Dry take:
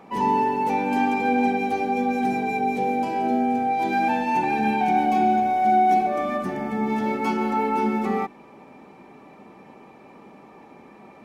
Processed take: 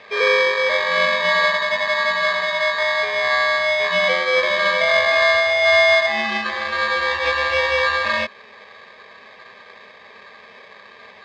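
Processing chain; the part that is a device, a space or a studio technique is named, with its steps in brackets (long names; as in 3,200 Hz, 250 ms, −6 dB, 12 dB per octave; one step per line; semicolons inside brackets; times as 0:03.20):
ring modulator pedal into a guitar cabinet (ring modulator with a square carrier 1,400 Hz; loudspeaker in its box 95–4,200 Hz, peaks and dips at 150 Hz −8 dB, 300 Hz −9 dB, 460 Hz +5 dB, 940 Hz −4 dB)
level +4.5 dB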